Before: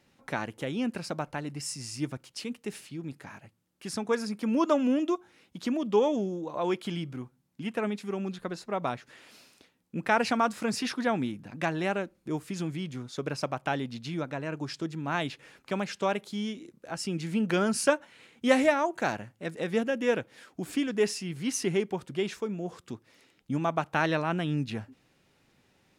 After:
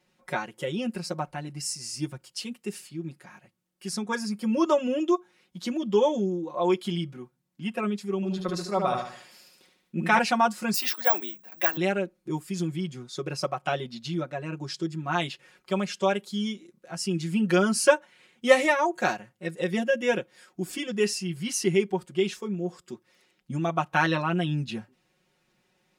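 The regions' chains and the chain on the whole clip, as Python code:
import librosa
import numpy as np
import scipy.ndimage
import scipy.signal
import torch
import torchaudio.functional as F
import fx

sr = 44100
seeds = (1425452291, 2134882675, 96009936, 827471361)

y = fx.chain(x, sr, fx.echo_feedback(ms=74, feedback_pct=45, wet_db=-4.5),
    fx.sustainer(db_per_s=64.0), at=(8.15, 10.19))
y = fx.chain(y, sr, fx.highpass(hz=460.0, slope=12),
    fx.high_shelf(hz=11000.0, db=5.5),
    fx.resample_bad(factor=2, down='none', up='zero_stuff'), at=(10.74, 11.77))
y = fx.noise_reduce_blind(y, sr, reduce_db=7)
y = fx.low_shelf(y, sr, hz=320.0, db=-3.5)
y = y + 0.96 * np.pad(y, (int(5.5 * sr / 1000.0), 0))[:len(y)]
y = y * librosa.db_to_amplitude(1.5)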